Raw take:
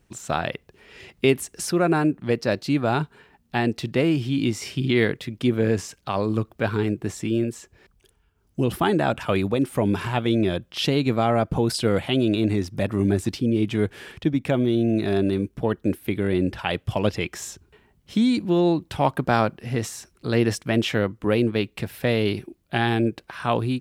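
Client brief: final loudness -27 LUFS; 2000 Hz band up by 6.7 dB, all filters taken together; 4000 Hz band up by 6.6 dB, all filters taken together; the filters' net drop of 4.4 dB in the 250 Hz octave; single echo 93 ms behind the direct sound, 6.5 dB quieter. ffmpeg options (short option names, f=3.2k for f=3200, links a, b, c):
-af "equalizer=f=250:t=o:g=-6,equalizer=f=2k:t=o:g=7,equalizer=f=4k:t=o:g=6,aecho=1:1:93:0.473,volume=-4dB"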